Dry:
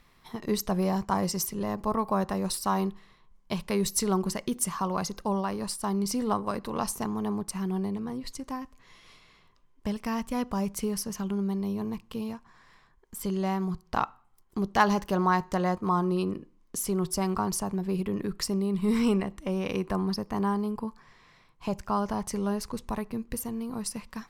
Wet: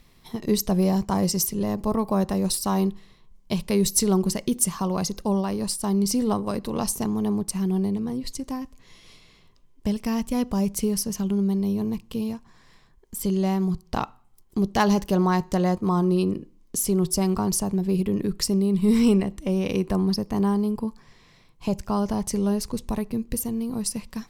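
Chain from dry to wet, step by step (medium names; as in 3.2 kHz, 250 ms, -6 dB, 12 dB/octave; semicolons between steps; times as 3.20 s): peaking EQ 1.3 kHz -10 dB 1.8 oct; trim +7 dB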